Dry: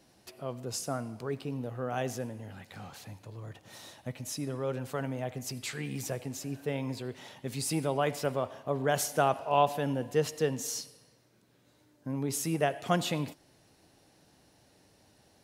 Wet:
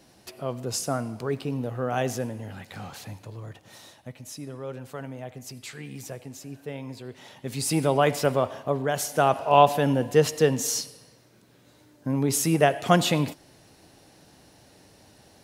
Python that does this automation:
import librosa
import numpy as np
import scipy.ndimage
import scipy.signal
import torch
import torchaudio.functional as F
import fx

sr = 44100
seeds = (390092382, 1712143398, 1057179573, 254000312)

y = fx.gain(x, sr, db=fx.line((3.17, 6.5), (4.14, -2.5), (6.96, -2.5), (7.87, 8.0), (8.61, 8.0), (8.93, 1.0), (9.49, 8.5)))